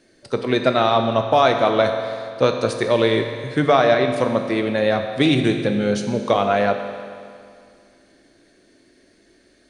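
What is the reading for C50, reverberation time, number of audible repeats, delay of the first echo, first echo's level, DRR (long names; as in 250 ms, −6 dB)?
6.5 dB, 2.3 s, no echo audible, no echo audible, no echo audible, 5.0 dB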